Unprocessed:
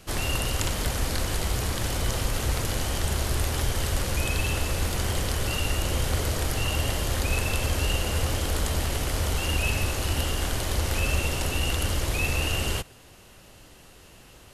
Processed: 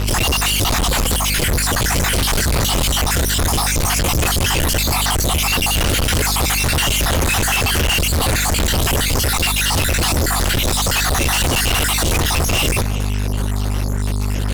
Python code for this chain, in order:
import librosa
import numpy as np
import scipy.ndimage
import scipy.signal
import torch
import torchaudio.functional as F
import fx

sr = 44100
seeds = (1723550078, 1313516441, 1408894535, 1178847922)

y = fx.spec_dropout(x, sr, seeds[0], share_pct=54)
y = fx.add_hum(y, sr, base_hz=50, snr_db=11)
y = fx.fuzz(y, sr, gain_db=43.0, gate_db=-47.0)
y = y * 10.0 ** (-1.5 / 20.0)